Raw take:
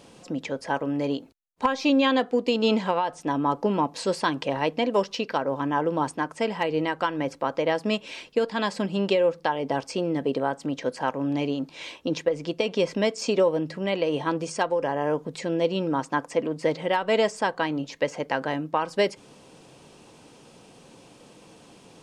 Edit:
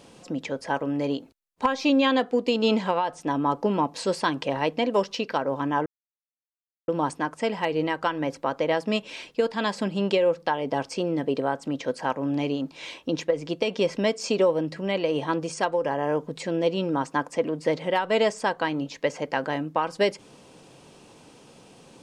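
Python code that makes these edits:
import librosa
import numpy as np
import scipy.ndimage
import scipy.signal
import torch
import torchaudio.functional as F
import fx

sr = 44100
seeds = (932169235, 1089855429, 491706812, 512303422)

y = fx.edit(x, sr, fx.insert_silence(at_s=5.86, length_s=1.02), tone=tone)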